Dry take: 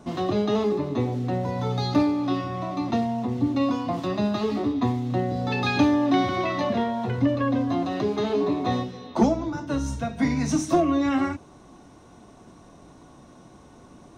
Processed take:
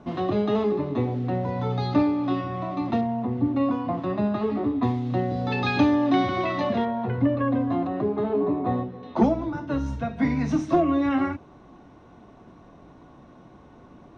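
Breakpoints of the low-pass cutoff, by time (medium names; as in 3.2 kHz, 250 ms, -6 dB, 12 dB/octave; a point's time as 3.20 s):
3.1 kHz
from 3.01 s 2 kHz
from 4.83 s 4.2 kHz
from 6.85 s 2.1 kHz
from 7.87 s 1.3 kHz
from 9.03 s 2.9 kHz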